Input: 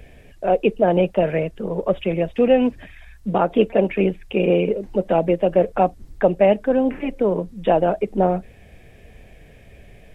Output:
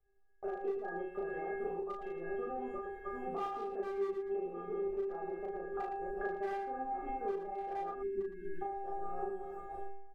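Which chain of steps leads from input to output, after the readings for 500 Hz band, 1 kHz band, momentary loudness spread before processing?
-19.0 dB, -14.0 dB, 7 LU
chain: regenerating reverse delay 0.582 s, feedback 46%, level -9 dB; in parallel at +1.5 dB: limiter -15 dBFS, peak gain reduction 11.5 dB; on the sum: gate -30 dBFS, range -27 dB; resonant high shelf 1900 Hz -12.5 dB, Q 3; metallic resonator 390 Hz, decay 0.81 s, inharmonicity 0.008; spectral delete 7.91–8.62, 390–1500 Hz; overloaded stage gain 28.5 dB; compressor 12:1, threshold -46 dBFS, peak gain reduction 16 dB; on a send: loudspeakers at several distances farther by 12 m -1 dB, 39 m -7 dB; on the sum: gain +8.5 dB

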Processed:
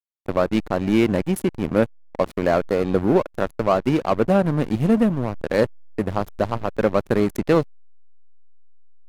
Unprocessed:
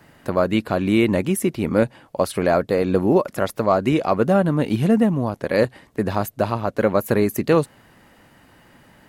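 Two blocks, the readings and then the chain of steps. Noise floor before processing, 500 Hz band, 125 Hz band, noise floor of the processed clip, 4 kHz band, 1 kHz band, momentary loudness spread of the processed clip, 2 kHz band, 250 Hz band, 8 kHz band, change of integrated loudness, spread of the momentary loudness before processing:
-53 dBFS, -1.0 dB, -1.5 dB, -50 dBFS, -2.5 dB, -1.5 dB, 7 LU, -2.0 dB, -1.0 dB, n/a, -1.0 dB, 6 LU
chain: backlash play -19 dBFS

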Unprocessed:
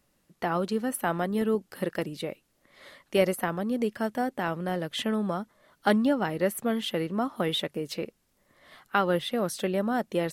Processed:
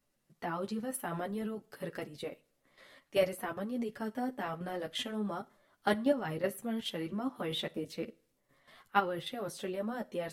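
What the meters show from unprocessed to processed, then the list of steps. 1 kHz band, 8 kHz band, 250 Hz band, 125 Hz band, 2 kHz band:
-6.5 dB, -7.5 dB, -8.5 dB, -9.0 dB, -7.5 dB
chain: level quantiser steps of 11 dB; chorus voices 4, 0.49 Hz, delay 11 ms, depth 4.1 ms; two-slope reverb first 0.37 s, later 1.5 s, from -27 dB, DRR 16 dB

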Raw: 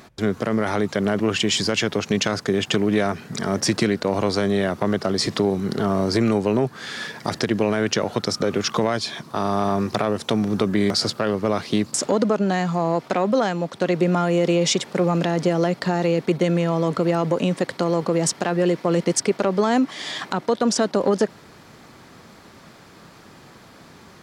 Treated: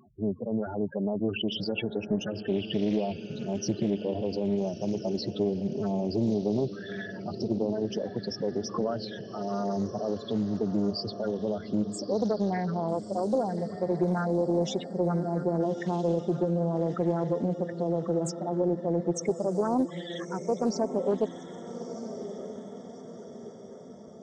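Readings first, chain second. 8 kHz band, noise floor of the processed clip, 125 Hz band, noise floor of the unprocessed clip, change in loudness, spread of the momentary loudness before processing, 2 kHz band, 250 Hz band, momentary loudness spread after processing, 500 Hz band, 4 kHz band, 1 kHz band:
-16.0 dB, -44 dBFS, -7.5 dB, -47 dBFS, -8.0 dB, 5 LU, -15.5 dB, -7.0 dB, 10 LU, -7.0 dB, -13.5 dB, -10.0 dB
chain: loudest bins only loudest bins 8; diffused feedback echo 1.286 s, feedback 49%, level -10.5 dB; Doppler distortion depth 0.38 ms; gain -6.5 dB

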